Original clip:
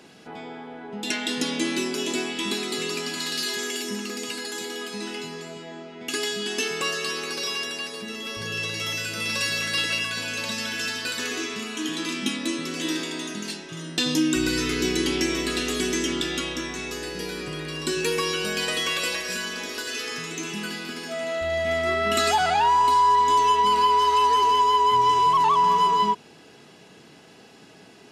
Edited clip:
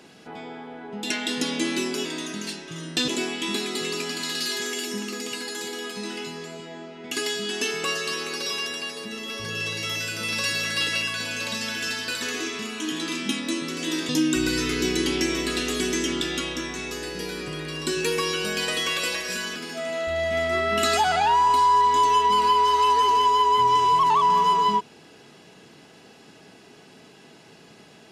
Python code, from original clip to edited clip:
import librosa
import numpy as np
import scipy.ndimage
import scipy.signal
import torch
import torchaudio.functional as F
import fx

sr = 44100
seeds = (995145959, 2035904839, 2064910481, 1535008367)

y = fx.edit(x, sr, fx.move(start_s=13.06, length_s=1.03, to_s=2.05),
    fx.cut(start_s=19.56, length_s=1.34), tone=tone)